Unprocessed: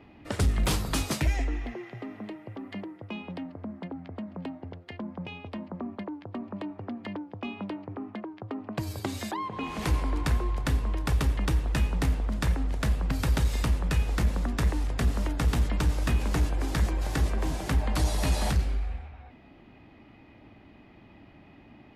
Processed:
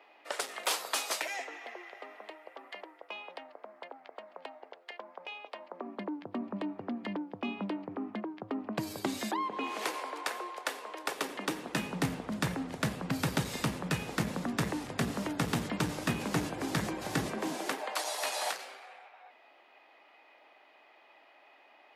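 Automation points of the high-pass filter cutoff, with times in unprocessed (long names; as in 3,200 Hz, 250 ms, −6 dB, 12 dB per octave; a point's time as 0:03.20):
high-pass filter 24 dB per octave
0:05.64 520 Hz
0:06.16 160 Hz
0:09.17 160 Hz
0:10.00 460 Hz
0:10.93 460 Hz
0:12.06 130 Hz
0:17.25 130 Hz
0:17.98 550 Hz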